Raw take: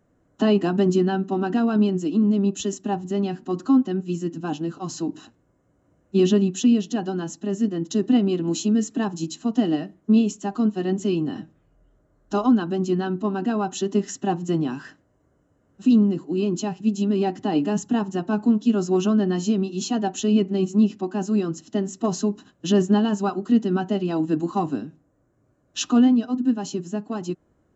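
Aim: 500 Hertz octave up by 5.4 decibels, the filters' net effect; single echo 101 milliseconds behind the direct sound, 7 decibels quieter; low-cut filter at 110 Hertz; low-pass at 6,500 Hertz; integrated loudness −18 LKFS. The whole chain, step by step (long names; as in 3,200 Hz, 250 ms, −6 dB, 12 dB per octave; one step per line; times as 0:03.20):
high-pass filter 110 Hz
low-pass filter 6,500 Hz
parametric band 500 Hz +8 dB
single-tap delay 101 ms −7 dB
level +2 dB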